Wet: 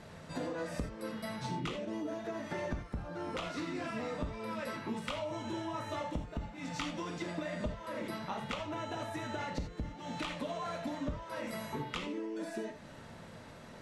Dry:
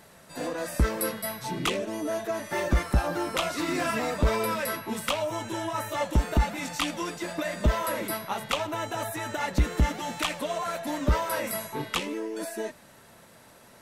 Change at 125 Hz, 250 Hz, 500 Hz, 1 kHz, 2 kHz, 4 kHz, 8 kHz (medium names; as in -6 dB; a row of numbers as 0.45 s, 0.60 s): -11.5 dB, -6.5 dB, -9.5 dB, -10.0 dB, -10.5 dB, -11.0 dB, -17.0 dB